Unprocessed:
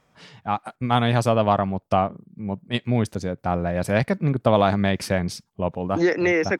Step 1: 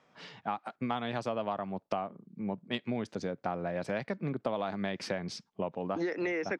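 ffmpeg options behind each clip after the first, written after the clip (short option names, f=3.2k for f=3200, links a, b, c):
-filter_complex "[0:a]acrossover=split=160 6500:gain=0.126 1 0.0631[a][b][c];[a][b][c]amix=inputs=3:normalize=0,acompressor=threshold=-29dB:ratio=6,volume=-1.5dB"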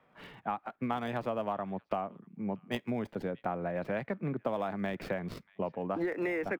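-filter_complex "[0:a]acrossover=split=140|1200|3300[a][b][c][d];[c]aecho=1:1:635:0.0794[e];[d]acrusher=samples=42:mix=1:aa=0.000001:lfo=1:lforange=25.2:lforate=0.6[f];[a][b][e][f]amix=inputs=4:normalize=0"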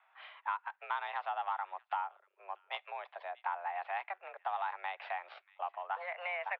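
-af "asoftclip=type=tanh:threshold=-19.5dB,highpass=f=560:t=q:w=0.5412,highpass=f=560:t=q:w=1.307,lowpass=f=3.5k:t=q:w=0.5176,lowpass=f=3.5k:t=q:w=0.7071,lowpass=f=3.5k:t=q:w=1.932,afreqshift=180"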